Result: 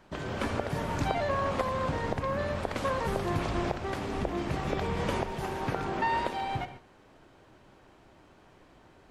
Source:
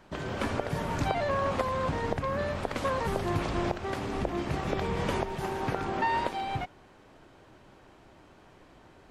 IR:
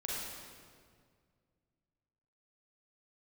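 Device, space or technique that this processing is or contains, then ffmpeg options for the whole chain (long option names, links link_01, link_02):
keyed gated reverb: -filter_complex "[0:a]asplit=3[link_01][link_02][link_03];[1:a]atrim=start_sample=2205[link_04];[link_02][link_04]afir=irnorm=-1:irlink=0[link_05];[link_03]apad=whole_len=401527[link_06];[link_05][link_06]sidechaingate=range=-33dB:threshold=-48dB:ratio=16:detection=peak,volume=-12dB[link_07];[link_01][link_07]amix=inputs=2:normalize=0,volume=-2dB"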